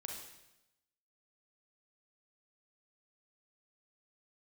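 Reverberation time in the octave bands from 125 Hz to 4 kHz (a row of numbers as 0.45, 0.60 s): 1.0, 1.0, 0.95, 0.90, 0.90, 0.90 s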